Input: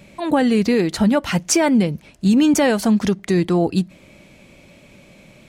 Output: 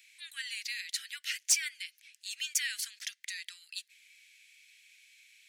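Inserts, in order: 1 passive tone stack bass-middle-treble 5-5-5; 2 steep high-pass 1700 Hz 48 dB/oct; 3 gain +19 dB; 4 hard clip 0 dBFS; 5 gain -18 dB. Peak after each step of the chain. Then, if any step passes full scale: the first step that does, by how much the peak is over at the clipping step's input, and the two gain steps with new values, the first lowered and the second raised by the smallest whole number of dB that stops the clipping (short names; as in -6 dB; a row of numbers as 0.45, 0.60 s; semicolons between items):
-11.5, -11.5, +7.5, 0.0, -18.0 dBFS; step 3, 7.5 dB; step 3 +11 dB, step 5 -10 dB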